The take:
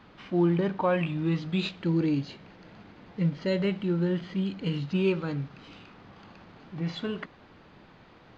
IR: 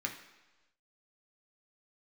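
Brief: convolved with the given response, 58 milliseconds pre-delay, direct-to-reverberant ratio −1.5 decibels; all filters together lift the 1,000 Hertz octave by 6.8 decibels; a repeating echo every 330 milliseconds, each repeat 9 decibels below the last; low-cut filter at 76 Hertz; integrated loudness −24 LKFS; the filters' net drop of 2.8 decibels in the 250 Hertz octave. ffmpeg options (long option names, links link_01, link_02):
-filter_complex "[0:a]highpass=76,equalizer=frequency=250:width_type=o:gain=-5.5,equalizer=frequency=1000:width_type=o:gain=8.5,aecho=1:1:330|660|990|1320:0.355|0.124|0.0435|0.0152,asplit=2[link_01][link_02];[1:a]atrim=start_sample=2205,adelay=58[link_03];[link_02][link_03]afir=irnorm=-1:irlink=0,volume=-1.5dB[link_04];[link_01][link_04]amix=inputs=2:normalize=0,volume=3dB"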